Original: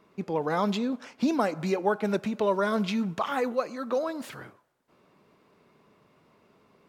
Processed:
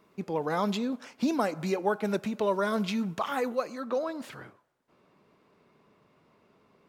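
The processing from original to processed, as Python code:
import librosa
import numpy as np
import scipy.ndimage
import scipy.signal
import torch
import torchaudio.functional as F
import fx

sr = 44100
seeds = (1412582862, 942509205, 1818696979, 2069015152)

y = fx.high_shelf(x, sr, hz=8100.0, db=fx.steps((0.0, 7.0), (3.79, -5.5)))
y = y * librosa.db_to_amplitude(-2.0)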